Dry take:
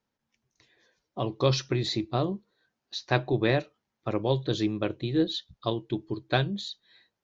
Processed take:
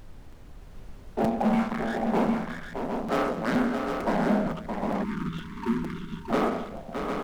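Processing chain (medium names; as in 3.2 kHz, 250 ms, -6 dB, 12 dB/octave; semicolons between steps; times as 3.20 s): spectral sustain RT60 0.48 s; mistuned SSB -330 Hz 280–2200 Hz; waveshaping leveller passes 5; 4.52–5.12 s: compressor with a negative ratio -22 dBFS, ratio -0.5; peak limiter -15 dBFS, peak gain reduction 4 dB; rippled Chebyshev high-pass 160 Hz, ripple 9 dB; added noise brown -44 dBFS; multi-tap echo 193/619/758 ms -14.5/-6.5/-6 dB; 5.03–6.30 s: spectral selection erased 410–900 Hz; crackling interface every 0.46 s, samples 256, repeat, from 0.32 s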